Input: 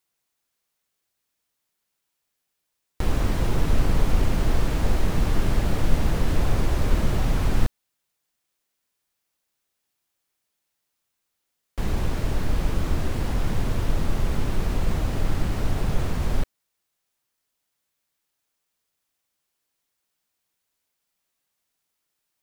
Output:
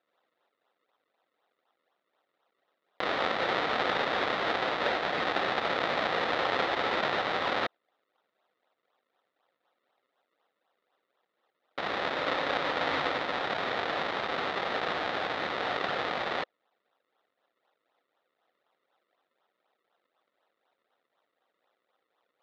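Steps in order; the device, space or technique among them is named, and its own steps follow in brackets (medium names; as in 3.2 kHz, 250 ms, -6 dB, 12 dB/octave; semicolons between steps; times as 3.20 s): 12.14–13.18 s: rippled EQ curve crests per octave 1.1, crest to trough 12 dB; circuit-bent sampling toy (decimation with a swept rate 38×, swing 100% 4 Hz; cabinet simulation 510–4200 Hz, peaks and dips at 520 Hz +4 dB, 750 Hz +5 dB, 1.3 kHz +6 dB, 1.9 kHz +7 dB, 3.7 kHz +8 dB); trim +2 dB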